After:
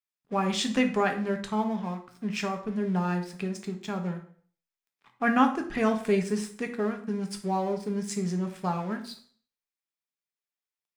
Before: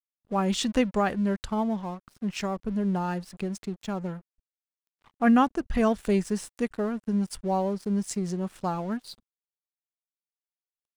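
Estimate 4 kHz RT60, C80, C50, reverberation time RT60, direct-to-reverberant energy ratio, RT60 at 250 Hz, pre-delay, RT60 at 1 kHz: 0.45 s, 15.0 dB, 10.5 dB, 0.50 s, 4.5 dB, 0.50 s, 3 ms, 0.50 s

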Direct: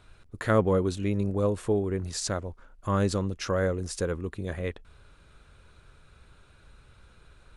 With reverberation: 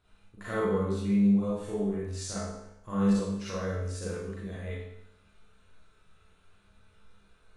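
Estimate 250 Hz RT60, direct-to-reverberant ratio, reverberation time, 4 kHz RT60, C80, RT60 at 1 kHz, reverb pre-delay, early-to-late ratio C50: 0.80 s, −9.0 dB, 0.80 s, 0.75 s, 2.0 dB, 0.75 s, 34 ms, −2.5 dB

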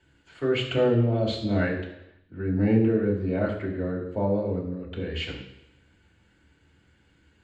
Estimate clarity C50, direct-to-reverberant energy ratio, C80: 6.5 dB, −3.0 dB, 8.5 dB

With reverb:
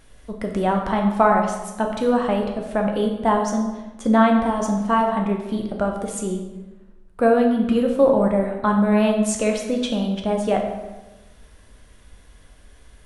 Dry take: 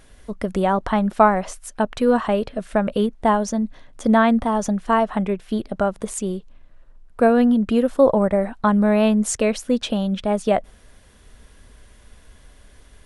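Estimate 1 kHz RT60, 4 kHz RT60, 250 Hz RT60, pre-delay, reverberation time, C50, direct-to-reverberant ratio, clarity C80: 1.0 s, 0.80 s, 1.3 s, 8 ms, 1.1 s, 5.0 dB, 1.5 dB, 7.5 dB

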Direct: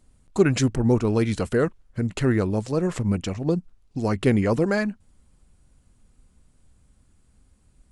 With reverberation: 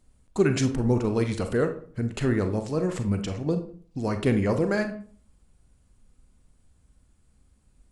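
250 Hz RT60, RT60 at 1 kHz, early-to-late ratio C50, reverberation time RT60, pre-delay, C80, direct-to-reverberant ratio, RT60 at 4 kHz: 0.60 s, 0.45 s, 10.5 dB, 0.45 s, 33 ms, 15.0 dB, 7.0 dB, 0.30 s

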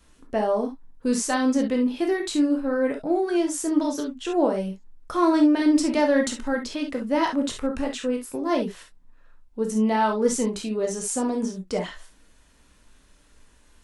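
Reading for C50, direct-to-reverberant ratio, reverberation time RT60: 8.5 dB, 2.0 dB, non-exponential decay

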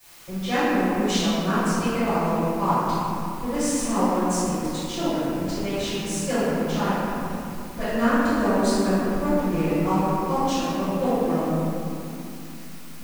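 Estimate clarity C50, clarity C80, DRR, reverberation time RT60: −5.5 dB, −3.0 dB, −17.0 dB, 2.8 s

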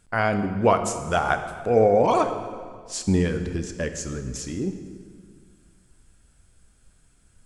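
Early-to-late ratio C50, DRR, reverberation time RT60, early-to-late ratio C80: 9.0 dB, 7.5 dB, 1.9 s, 10.0 dB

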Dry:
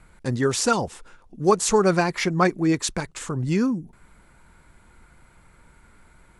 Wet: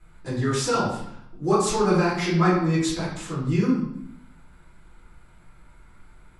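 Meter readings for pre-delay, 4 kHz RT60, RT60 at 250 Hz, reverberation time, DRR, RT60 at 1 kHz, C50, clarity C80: 3 ms, 0.65 s, 0.90 s, 0.70 s, −10.0 dB, 0.75 s, 2.0 dB, 5.5 dB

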